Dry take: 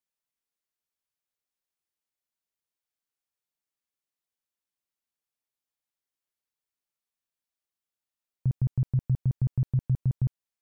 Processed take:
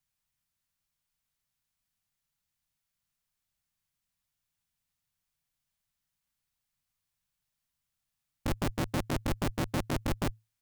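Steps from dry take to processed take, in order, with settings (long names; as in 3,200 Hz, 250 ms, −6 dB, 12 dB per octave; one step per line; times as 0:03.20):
graphic EQ with 10 bands 125 Hz +12 dB, 250 Hz +10 dB, 500 Hz −12 dB
frequency shifter −110 Hz
wrap-around overflow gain 20 dB
brickwall limiter −31 dBFS, peak gain reduction 11 dB
level +6 dB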